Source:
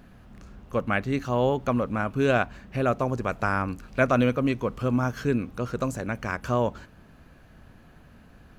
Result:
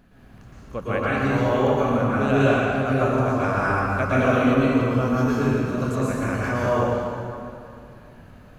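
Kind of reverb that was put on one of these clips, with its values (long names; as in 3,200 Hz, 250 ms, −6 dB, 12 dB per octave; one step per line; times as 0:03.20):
dense smooth reverb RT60 2.6 s, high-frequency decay 0.7×, pre-delay 105 ms, DRR −9 dB
level −5 dB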